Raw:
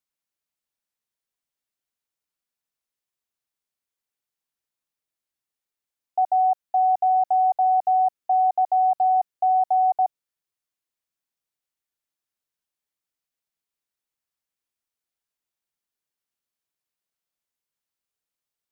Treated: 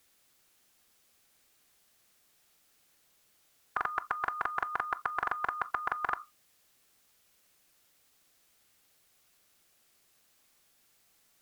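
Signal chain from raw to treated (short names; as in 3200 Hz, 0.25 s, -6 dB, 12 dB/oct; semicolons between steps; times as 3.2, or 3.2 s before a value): notch 580 Hz, Q 12; wide varispeed 1.64×; on a send at -20.5 dB: reverb RT60 0.15 s, pre-delay 12 ms; on the sum: spectral compressor 10:1; gain +2 dB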